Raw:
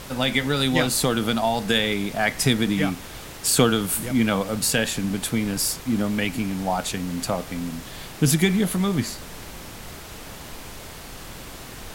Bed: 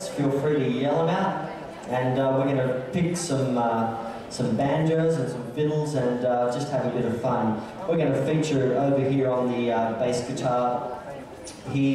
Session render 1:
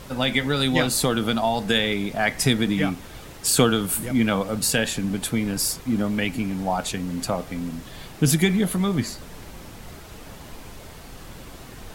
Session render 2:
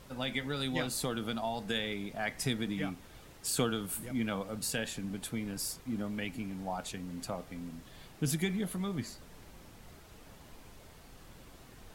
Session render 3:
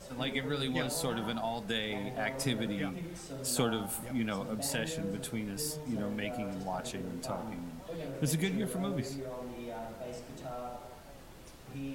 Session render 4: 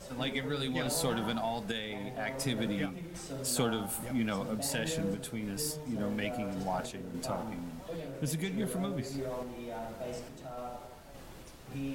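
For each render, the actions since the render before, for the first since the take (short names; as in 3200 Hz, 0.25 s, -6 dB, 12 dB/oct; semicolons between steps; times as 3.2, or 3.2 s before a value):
denoiser 6 dB, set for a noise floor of -39 dBFS
gain -13 dB
add bed -18 dB
random-step tremolo, depth 55%; in parallel at -4.5 dB: soft clip -32.5 dBFS, distortion -13 dB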